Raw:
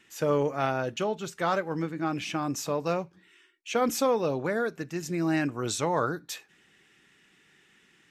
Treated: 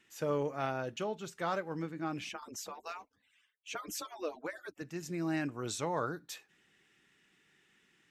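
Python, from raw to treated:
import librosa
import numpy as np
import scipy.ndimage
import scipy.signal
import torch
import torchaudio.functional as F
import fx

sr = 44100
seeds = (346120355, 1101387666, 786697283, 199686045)

y = fx.hpss_only(x, sr, part='percussive', at=(2.29, 4.82))
y = y * 10.0 ** (-7.5 / 20.0)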